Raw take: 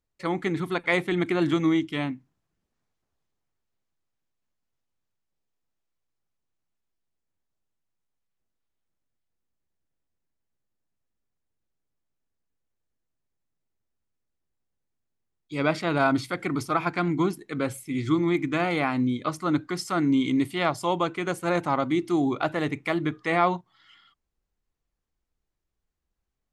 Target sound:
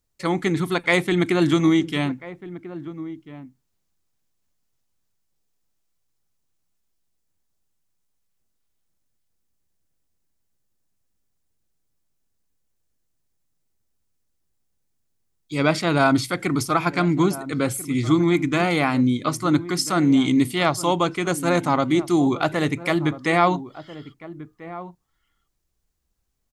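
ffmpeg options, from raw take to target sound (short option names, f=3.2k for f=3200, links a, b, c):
-filter_complex "[0:a]bass=f=250:g=3,treble=f=4k:g=8,asplit=2[a][b];[b]adelay=1341,volume=-15dB,highshelf=f=4k:g=-30.2[c];[a][c]amix=inputs=2:normalize=0,volume=4dB"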